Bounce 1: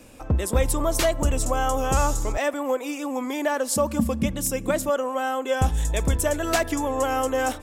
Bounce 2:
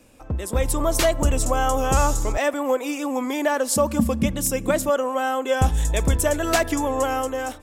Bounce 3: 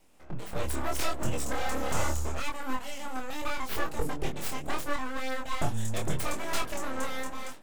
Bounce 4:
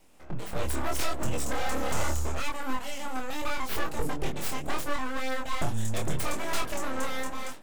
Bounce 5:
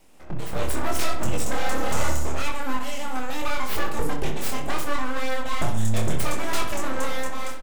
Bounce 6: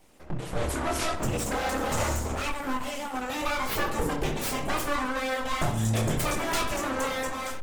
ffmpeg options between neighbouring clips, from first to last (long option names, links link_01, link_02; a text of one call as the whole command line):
ffmpeg -i in.wav -af "dynaudnorm=framelen=110:gausssize=11:maxgain=9.5dB,volume=-5.5dB" out.wav
ffmpeg -i in.wav -af "aeval=exprs='abs(val(0))':channel_layout=same,flanger=delay=22.5:depth=4.9:speed=0.77,volume=-5dB" out.wav
ffmpeg -i in.wav -af "asoftclip=type=tanh:threshold=-19dB,volume=3dB" out.wav
ffmpeg -i in.wav -filter_complex "[0:a]asplit=2[link_01][link_02];[link_02]adelay=63,lowpass=frequency=4000:poles=1,volume=-7.5dB,asplit=2[link_03][link_04];[link_04]adelay=63,lowpass=frequency=4000:poles=1,volume=0.53,asplit=2[link_05][link_06];[link_06]adelay=63,lowpass=frequency=4000:poles=1,volume=0.53,asplit=2[link_07][link_08];[link_08]adelay=63,lowpass=frequency=4000:poles=1,volume=0.53,asplit=2[link_09][link_10];[link_10]adelay=63,lowpass=frequency=4000:poles=1,volume=0.53,asplit=2[link_11][link_12];[link_12]adelay=63,lowpass=frequency=4000:poles=1,volume=0.53[link_13];[link_01][link_03][link_05][link_07][link_09][link_11][link_13]amix=inputs=7:normalize=0,volume=3.5dB" out.wav
ffmpeg -i in.wav -ar 48000 -c:a libopus -b:a 16k out.opus